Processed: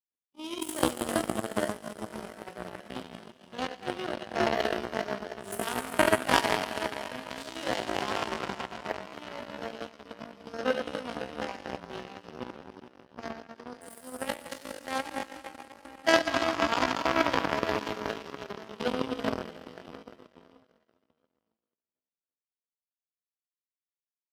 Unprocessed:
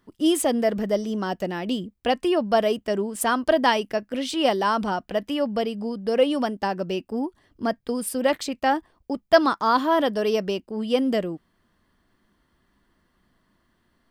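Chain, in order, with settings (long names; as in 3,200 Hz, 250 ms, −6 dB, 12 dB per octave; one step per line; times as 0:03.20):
dense smooth reverb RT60 3.9 s, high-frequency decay 0.95×, DRR −5.5 dB
tempo change 0.58×
power curve on the samples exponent 3
high-pass filter 62 Hz
in parallel at +1 dB: downward compressor, threshold −47 dBFS, peak gain reduction 28.5 dB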